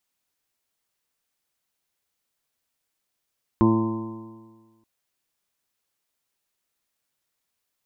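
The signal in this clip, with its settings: stretched partials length 1.23 s, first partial 111 Hz, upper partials 4/5/-14.5/-14.5/-17/-18.5/-8/-4 dB, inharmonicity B 0.00088, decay 1.50 s, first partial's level -21 dB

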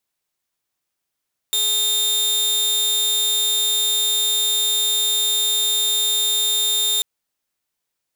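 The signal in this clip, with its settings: tone saw 3640 Hz -14.5 dBFS 5.49 s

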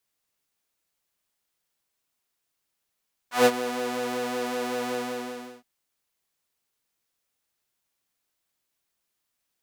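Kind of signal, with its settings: synth patch with pulse-width modulation B3, oscillator 2 square, interval -12 st, detune 17 cents, oscillator 2 level -6 dB, filter highpass, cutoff 340 Hz, Q 1.5, filter decay 0.11 s, filter sustain 15%, attack 0.146 s, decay 0.05 s, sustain -13.5 dB, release 0.71 s, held 1.61 s, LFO 5.3 Hz, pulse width 35%, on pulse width 13%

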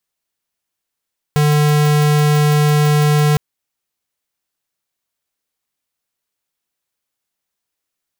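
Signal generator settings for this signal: tone square 149 Hz -12.5 dBFS 2.01 s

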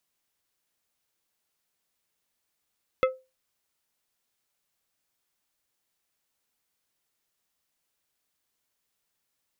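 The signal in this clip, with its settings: glass hit plate, lowest mode 519 Hz, decay 0.26 s, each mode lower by 5 dB, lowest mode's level -16 dB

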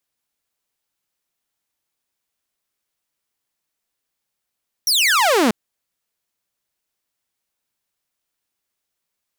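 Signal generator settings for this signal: laser zap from 5900 Hz, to 200 Hz, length 0.64 s saw, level -10.5 dB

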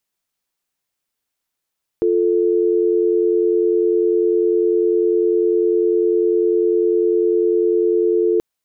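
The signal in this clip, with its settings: call progress tone dial tone, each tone -16 dBFS 6.38 s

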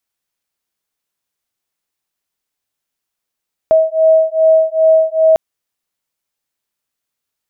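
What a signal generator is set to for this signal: beating tones 639 Hz, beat 2.5 Hz, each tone -11 dBFS 1.65 s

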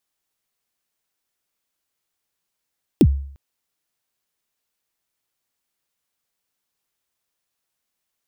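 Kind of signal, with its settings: kick drum length 0.35 s, from 390 Hz, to 69 Hz, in 56 ms, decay 0.58 s, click on, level -6 dB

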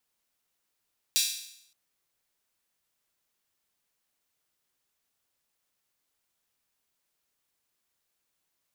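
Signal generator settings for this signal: open hi-hat length 0.57 s, high-pass 3700 Hz, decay 0.73 s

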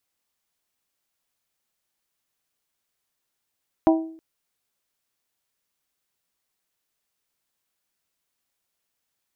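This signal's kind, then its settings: glass hit bell, length 0.32 s, lowest mode 323 Hz, modes 4, decay 0.56 s, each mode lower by 4 dB, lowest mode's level -12 dB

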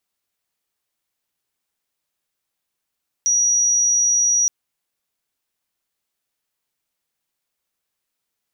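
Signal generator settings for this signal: tone sine 5790 Hz -14 dBFS 1.22 s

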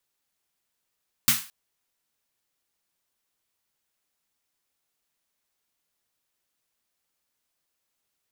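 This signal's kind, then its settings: snare drum length 0.22 s, tones 140 Hz, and 230 Hz, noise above 1100 Hz, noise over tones 12 dB, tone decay 0.23 s, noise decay 0.36 s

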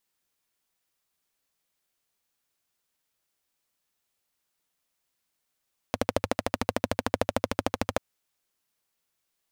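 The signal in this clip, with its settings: single-cylinder engine model, steady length 2.04 s, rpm 1600, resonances 100/250/520 Hz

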